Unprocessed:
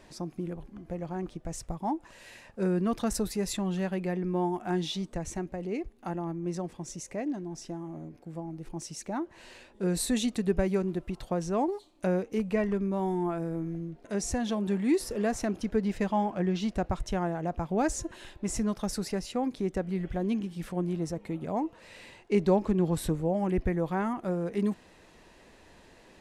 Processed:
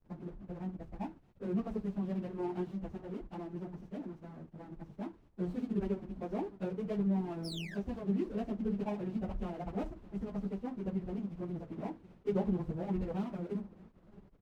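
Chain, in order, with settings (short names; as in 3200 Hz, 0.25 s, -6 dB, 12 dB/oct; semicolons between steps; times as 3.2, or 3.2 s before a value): median filter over 25 samples; high shelf 7500 Hz -11.5 dB; feedback echo 1.13 s, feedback 49%, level -23 dB; on a send at -8 dB: reverb RT60 0.45 s, pre-delay 5 ms; on the sum: painted sound fall, 13.54–14.11, 1500–5600 Hz -34 dBFS; in parallel at +1.5 dB: compressor 5:1, threshold -39 dBFS, peak gain reduction 19 dB; on the sum: dynamic EQ 1800 Hz, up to -5 dB, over -54 dBFS, Q 2.2; backlash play -35.5 dBFS; plain phase-vocoder stretch 0.55×; running maximum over 3 samples; gain -7 dB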